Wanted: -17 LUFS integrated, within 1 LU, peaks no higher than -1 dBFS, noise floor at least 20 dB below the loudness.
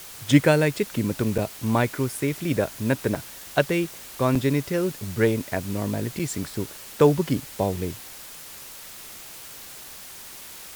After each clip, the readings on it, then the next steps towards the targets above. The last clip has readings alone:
dropouts 4; longest dropout 4.8 ms; noise floor -42 dBFS; noise floor target -45 dBFS; loudness -24.5 LUFS; peak level -4.5 dBFS; loudness target -17.0 LUFS
-> interpolate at 1.38/3.15/4.35/6.19 s, 4.8 ms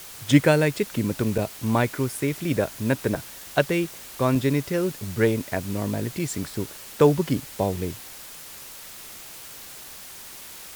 dropouts 0; noise floor -42 dBFS; noise floor target -45 dBFS
-> noise print and reduce 6 dB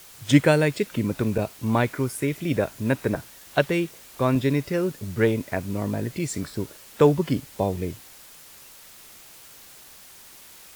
noise floor -48 dBFS; loudness -24.5 LUFS; peak level -4.5 dBFS; loudness target -17.0 LUFS
-> trim +7.5 dB; peak limiter -1 dBFS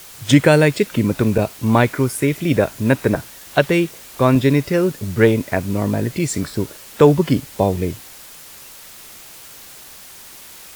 loudness -17.5 LUFS; peak level -1.0 dBFS; noise floor -40 dBFS

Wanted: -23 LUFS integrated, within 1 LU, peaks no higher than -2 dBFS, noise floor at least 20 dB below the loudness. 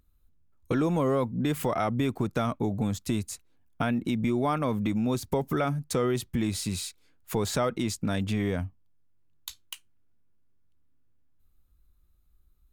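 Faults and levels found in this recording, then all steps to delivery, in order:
loudness -29.0 LUFS; peak level -15.0 dBFS; loudness target -23.0 LUFS
-> trim +6 dB

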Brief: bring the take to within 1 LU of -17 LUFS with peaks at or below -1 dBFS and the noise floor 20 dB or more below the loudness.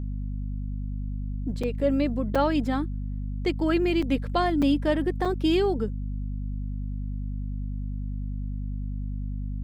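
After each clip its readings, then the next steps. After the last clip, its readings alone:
dropouts 5; longest dropout 5.1 ms; hum 50 Hz; highest harmonic 250 Hz; hum level -28 dBFS; loudness -28.0 LUFS; peak level -11.0 dBFS; loudness target -17.0 LUFS
-> interpolate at 1.63/2.35/4.02/4.62/5.25 s, 5.1 ms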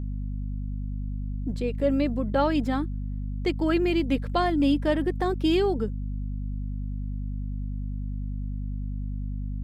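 dropouts 0; hum 50 Hz; highest harmonic 250 Hz; hum level -28 dBFS
-> de-hum 50 Hz, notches 5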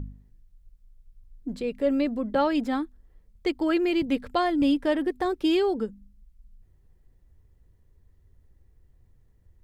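hum not found; loudness -26.0 LUFS; peak level -12.5 dBFS; loudness target -17.0 LUFS
-> trim +9 dB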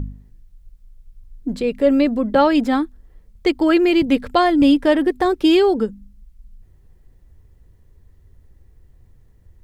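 loudness -17.0 LUFS; peak level -3.5 dBFS; noise floor -52 dBFS

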